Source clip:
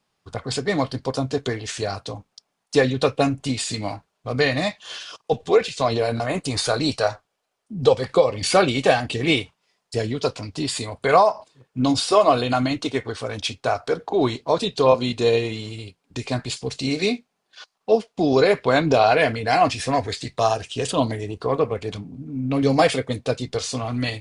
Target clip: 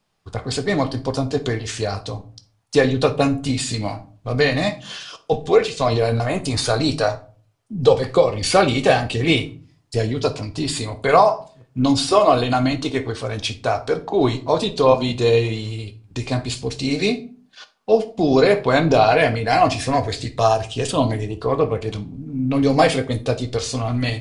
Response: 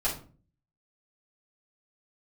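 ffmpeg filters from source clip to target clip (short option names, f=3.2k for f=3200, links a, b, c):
-filter_complex "[0:a]lowshelf=f=110:g=7,asplit=2[a][b];[1:a]atrim=start_sample=2205,adelay=9[c];[b][c]afir=irnorm=-1:irlink=0,volume=-16.5dB[d];[a][d]amix=inputs=2:normalize=0,volume=1dB"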